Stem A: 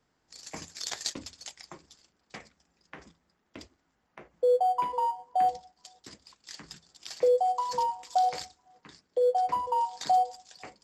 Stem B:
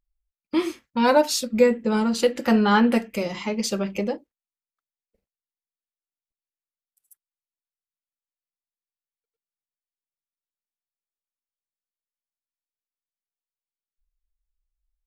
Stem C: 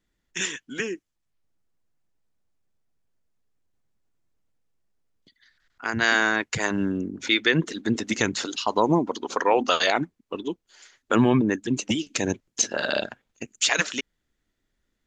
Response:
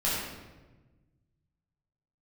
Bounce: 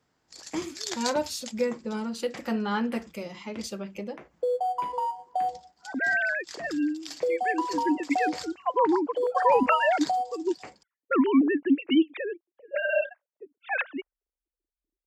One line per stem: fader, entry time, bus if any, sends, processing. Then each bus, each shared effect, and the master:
+1.5 dB, 0.00 s, no send, compressor 2.5:1, threshold -28 dBFS, peak gain reduction 6 dB
-10.0 dB, 0.00 s, no send, dry
-1.5 dB, 0.00 s, no send, sine-wave speech; low-pass opened by the level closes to 320 Hz, open at -17.5 dBFS; auto duck -18 dB, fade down 0.25 s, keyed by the second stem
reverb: off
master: HPF 42 Hz

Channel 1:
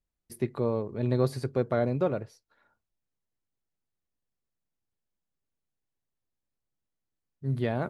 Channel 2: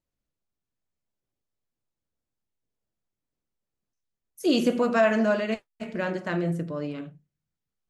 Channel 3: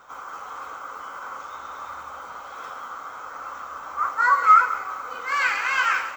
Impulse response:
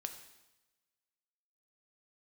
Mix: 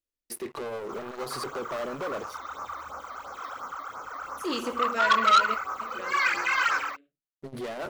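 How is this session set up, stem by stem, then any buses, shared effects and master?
-6.5 dB, 0.00 s, no send, HPF 380 Hz 12 dB/oct; compressor, threshold -30 dBFS, peak gain reduction 7.5 dB; sample leveller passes 5
-2.0 dB, 0.00 s, no send, low shelf 500 Hz -6.5 dB; fixed phaser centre 380 Hz, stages 4; auto duck -22 dB, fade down 1.75 s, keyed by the first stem
+1.5 dB, 0.80 s, no send, phaser stages 12, 2.9 Hz, lowest notch 140–3400 Hz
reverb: off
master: core saturation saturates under 2500 Hz

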